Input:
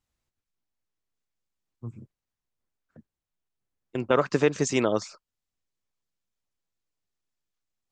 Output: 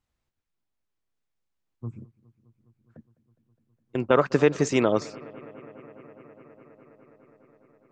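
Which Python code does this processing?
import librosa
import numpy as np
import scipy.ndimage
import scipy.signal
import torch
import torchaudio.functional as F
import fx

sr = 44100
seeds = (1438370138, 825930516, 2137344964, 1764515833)

y = fx.high_shelf(x, sr, hz=4700.0, db=-8.5)
y = fx.echo_bbd(y, sr, ms=206, stages=4096, feedback_pct=84, wet_db=-22.5)
y = y * 10.0 ** (2.5 / 20.0)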